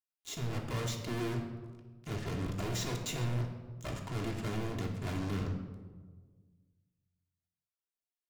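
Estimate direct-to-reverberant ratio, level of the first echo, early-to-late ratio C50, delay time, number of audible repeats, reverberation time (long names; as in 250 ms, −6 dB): 1.0 dB, no echo audible, 6.0 dB, no echo audible, no echo audible, 1.5 s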